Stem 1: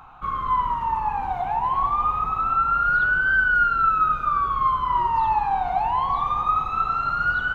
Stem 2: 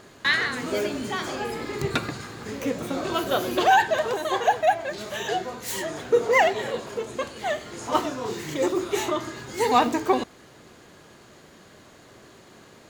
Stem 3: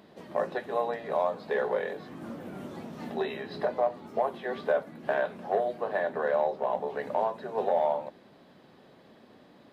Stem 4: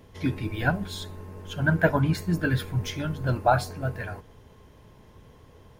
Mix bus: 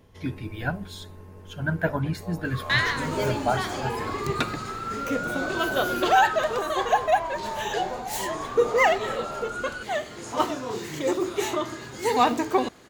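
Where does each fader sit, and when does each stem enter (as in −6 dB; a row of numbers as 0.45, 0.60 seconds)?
−12.5, −1.0, −13.5, −4.0 decibels; 2.30, 2.45, 1.50, 0.00 seconds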